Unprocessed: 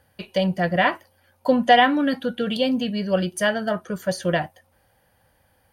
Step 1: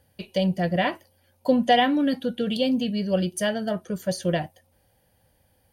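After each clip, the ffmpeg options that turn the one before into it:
-af "equalizer=f=1.3k:t=o:w=1.5:g=-10"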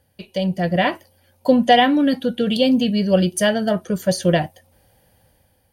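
-af "dynaudnorm=f=190:g=7:m=8dB"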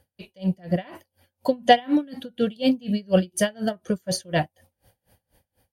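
-af "aeval=exprs='val(0)*pow(10,-29*(0.5-0.5*cos(2*PI*4.1*n/s))/20)':c=same"

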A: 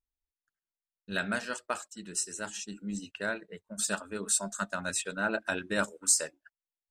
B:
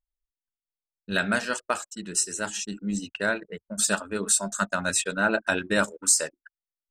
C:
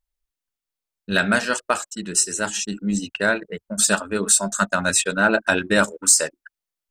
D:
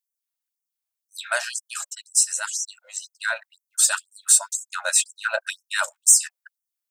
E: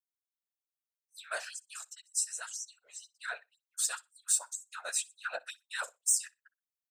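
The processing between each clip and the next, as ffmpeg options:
-filter_complex "[0:a]anlmdn=0.000631,asplit=2[a][b];[b]alimiter=limit=-18.5dB:level=0:latency=1:release=232,volume=2.5dB[c];[a][c]amix=inputs=2:normalize=0"
-af "acontrast=56"
-af "crystalizer=i=1:c=0,afftfilt=real='re*gte(b*sr/1024,490*pow(5500/490,0.5+0.5*sin(2*PI*2*pts/sr)))':imag='im*gte(b*sr/1024,490*pow(5500/490,0.5+0.5*sin(2*PI*2*pts/sr)))':win_size=1024:overlap=0.75,volume=-4dB"
-af "afftfilt=real='hypot(re,im)*cos(2*PI*random(0))':imag='hypot(re,im)*sin(2*PI*random(1))':win_size=512:overlap=0.75,aecho=1:1:61|122:0.0631|0.0107,volume=-7dB"

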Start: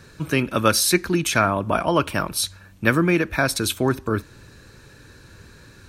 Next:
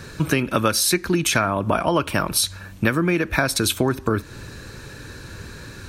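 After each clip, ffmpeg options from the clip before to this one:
-af "acompressor=threshold=-26dB:ratio=5,volume=9dB"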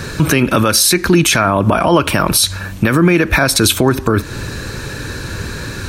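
-af "alimiter=level_in=14dB:limit=-1dB:release=50:level=0:latency=1,volume=-1dB"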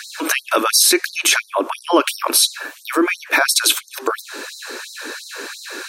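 -af "afftfilt=real='re*gte(b*sr/1024,230*pow(3900/230,0.5+0.5*sin(2*PI*2.9*pts/sr)))':imag='im*gte(b*sr/1024,230*pow(3900/230,0.5+0.5*sin(2*PI*2.9*pts/sr)))':win_size=1024:overlap=0.75,volume=-1dB"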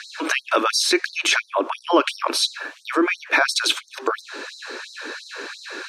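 -af "highpass=220,lowpass=5k,volume=-2dB"

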